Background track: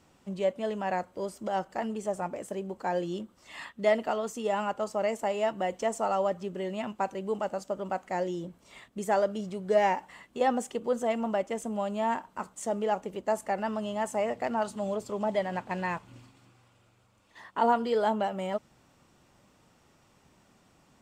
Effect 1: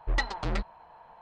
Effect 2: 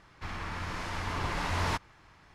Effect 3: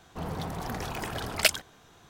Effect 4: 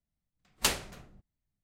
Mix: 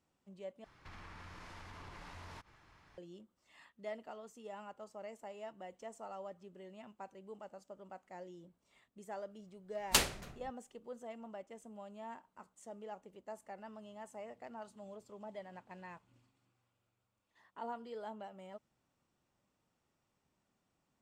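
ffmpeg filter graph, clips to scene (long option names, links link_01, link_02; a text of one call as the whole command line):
ffmpeg -i bed.wav -i cue0.wav -i cue1.wav -i cue2.wav -i cue3.wav -filter_complex "[0:a]volume=-19dB[link_01];[2:a]acompressor=threshold=-42dB:ratio=6:attack=3.2:release=140:knee=1:detection=peak[link_02];[link_01]asplit=2[link_03][link_04];[link_03]atrim=end=0.644[link_05];[link_02]atrim=end=2.34,asetpts=PTS-STARTPTS,volume=-6.5dB[link_06];[link_04]atrim=start=2.976[link_07];[4:a]atrim=end=1.63,asetpts=PTS-STARTPTS,volume=-1dB,afade=type=in:duration=0.004:curve=hsin,afade=type=out:start_time=1.626:duration=0.004:curve=hsin,adelay=410130S[link_08];[link_05][link_06]acrossfade=duration=0.004:curve1=hsin:curve2=hsin[link_09];[link_09][link_07]acrossfade=duration=0.004:curve1=hsin:curve2=hsin[link_10];[link_10][link_08]amix=inputs=2:normalize=0" out.wav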